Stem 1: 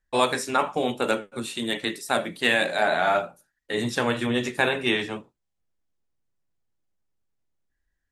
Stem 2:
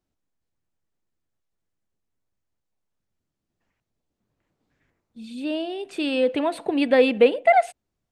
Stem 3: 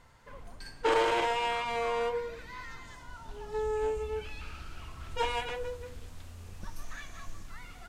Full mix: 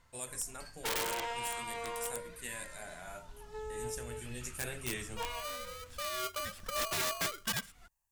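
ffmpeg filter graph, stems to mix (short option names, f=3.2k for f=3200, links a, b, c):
-filter_complex "[0:a]equalizer=f=125:t=o:w=1:g=6,equalizer=f=250:t=o:w=1:g=-4,equalizer=f=1k:t=o:w=1:g=-12,equalizer=f=4k:t=o:w=1:g=-10,equalizer=f=8k:t=o:w=1:g=6,aexciter=amount=2.8:drive=6.2:freq=4.9k,volume=-10dB,afade=t=in:st=4.24:d=0.73:silence=0.375837[a];[1:a]equalizer=f=250:t=o:w=0.67:g=5,equalizer=f=630:t=o:w=0.67:g=-9,equalizer=f=1.6k:t=o:w=0.67:g=4,aeval=exprs='val(0)*sgn(sin(2*PI*890*n/s))':c=same,volume=-15dB,asplit=2[b][c];[2:a]bandreject=f=790:w=12,volume=-7dB[d];[c]apad=whole_len=347585[e];[d][e]sidechaincompress=threshold=-44dB:ratio=8:attack=6.4:release=315[f];[a][b][f]amix=inputs=3:normalize=0,equalizer=f=380:w=0.74:g=-4,aeval=exprs='(mod(26.6*val(0)+1,2)-1)/26.6':c=same,highshelf=f=6k:g=4.5"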